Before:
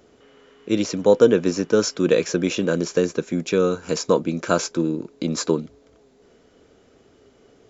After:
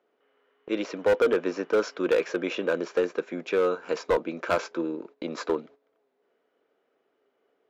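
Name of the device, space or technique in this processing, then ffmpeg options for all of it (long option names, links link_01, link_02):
walkie-talkie: -af "highpass=470,lowpass=2400,asoftclip=type=hard:threshold=-17dB,agate=range=-13dB:threshold=-46dB:ratio=16:detection=peak"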